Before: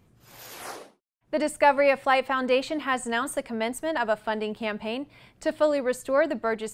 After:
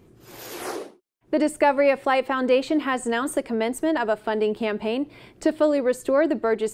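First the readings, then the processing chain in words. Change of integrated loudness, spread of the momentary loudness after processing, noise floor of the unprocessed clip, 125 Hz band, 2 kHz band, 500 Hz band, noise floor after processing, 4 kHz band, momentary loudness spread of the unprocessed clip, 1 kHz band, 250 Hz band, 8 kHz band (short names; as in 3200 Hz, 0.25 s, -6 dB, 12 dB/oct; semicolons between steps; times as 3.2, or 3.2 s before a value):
+2.5 dB, 12 LU, -64 dBFS, n/a, -0.5 dB, +3.5 dB, -55 dBFS, 0.0 dB, 17 LU, 0.0 dB, +7.0 dB, +1.5 dB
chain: in parallel at +3 dB: compressor, threshold -32 dBFS, peak gain reduction 17 dB; on the sum: bell 360 Hz +12 dB 0.76 oct; gain -3.5 dB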